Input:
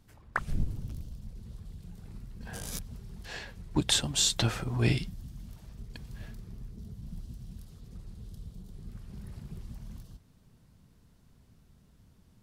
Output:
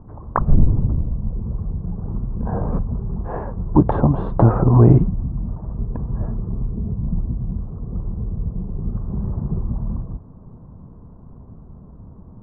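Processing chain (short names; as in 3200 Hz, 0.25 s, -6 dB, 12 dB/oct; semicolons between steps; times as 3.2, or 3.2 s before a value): Chebyshev low-pass 1100 Hz, order 4; maximiser +22.5 dB; gain -2 dB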